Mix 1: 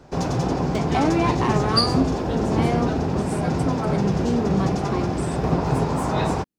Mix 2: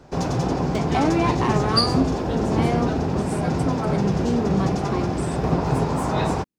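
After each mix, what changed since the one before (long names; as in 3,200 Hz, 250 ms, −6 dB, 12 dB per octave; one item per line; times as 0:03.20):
nothing changed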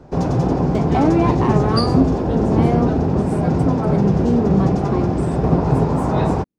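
master: add tilt shelving filter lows +6 dB, about 1,300 Hz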